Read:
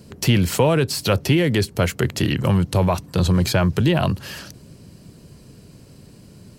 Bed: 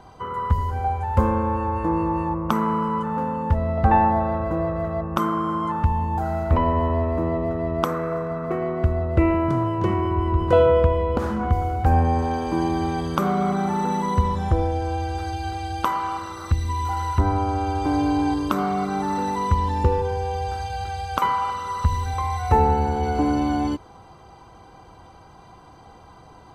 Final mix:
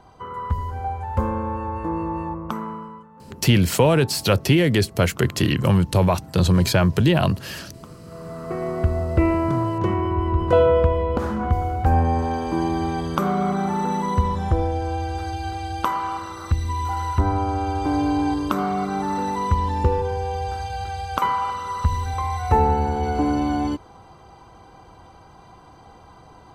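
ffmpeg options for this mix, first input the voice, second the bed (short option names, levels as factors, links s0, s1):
-filter_complex "[0:a]adelay=3200,volume=1.06[s0];[1:a]volume=8.91,afade=t=out:st=2.25:d=0.83:silence=0.112202,afade=t=in:st=8.05:d=0.7:silence=0.0749894[s1];[s0][s1]amix=inputs=2:normalize=0"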